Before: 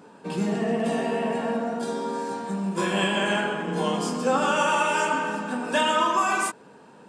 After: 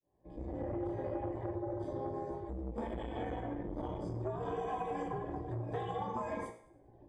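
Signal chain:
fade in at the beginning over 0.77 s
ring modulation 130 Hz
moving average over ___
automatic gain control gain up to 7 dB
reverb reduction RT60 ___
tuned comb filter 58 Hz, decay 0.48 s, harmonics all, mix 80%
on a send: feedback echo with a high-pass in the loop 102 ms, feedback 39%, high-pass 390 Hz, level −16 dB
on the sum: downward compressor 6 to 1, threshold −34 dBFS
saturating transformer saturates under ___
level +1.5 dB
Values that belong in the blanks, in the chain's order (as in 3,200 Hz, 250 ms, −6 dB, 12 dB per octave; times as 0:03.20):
32 samples, 0.98 s, 380 Hz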